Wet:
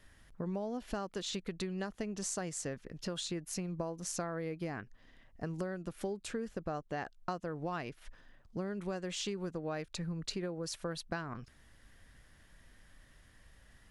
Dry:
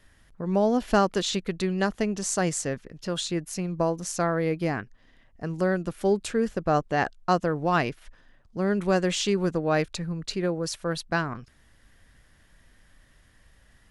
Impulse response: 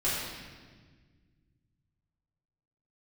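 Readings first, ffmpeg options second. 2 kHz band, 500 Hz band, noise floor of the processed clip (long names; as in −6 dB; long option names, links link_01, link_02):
−14.0 dB, −14.0 dB, −63 dBFS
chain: -af "acompressor=threshold=-32dB:ratio=12,volume=-2.5dB"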